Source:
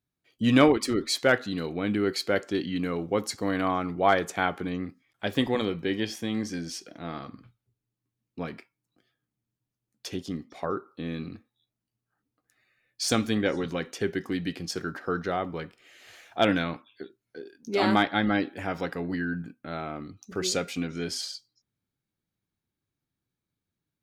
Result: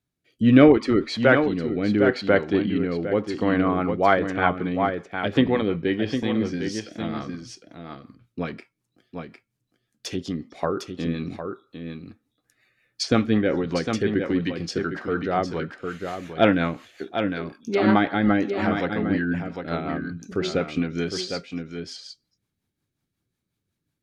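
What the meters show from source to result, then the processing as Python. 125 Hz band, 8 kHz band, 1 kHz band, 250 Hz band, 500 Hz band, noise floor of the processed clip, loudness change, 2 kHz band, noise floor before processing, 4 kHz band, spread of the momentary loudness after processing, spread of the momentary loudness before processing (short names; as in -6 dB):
+6.5 dB, -5.0 dB, +3.5 dB, +6.5 dB, +6.0 dB, -81 dBFS, +5.0 dB, +4.0 dB, under -85 dBFS, -0.5 dB, 17 LU, 15 LU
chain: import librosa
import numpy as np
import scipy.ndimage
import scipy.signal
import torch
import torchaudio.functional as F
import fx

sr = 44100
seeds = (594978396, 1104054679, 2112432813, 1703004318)

y = fx.env_lowpass_down(x, sr, base_hz=2500.0, full_db=-25.5)
y = y + 10.0 ** (-7.0 / 20.0) * np.pad(y, (int(756 * sr / 1000.0), 0))[:len(y)]
y = fx.rotary_switch(y, sr, hz=0.75, then_hz=5.5, switch_at_s=3.25)
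y = y * librosa.db_to_amplitude(7.0)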